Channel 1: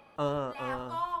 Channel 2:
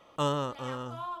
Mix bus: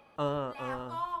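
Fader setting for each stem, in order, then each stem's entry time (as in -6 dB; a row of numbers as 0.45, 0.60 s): -2.5, -17.0 dB; 0.00, 0.00 s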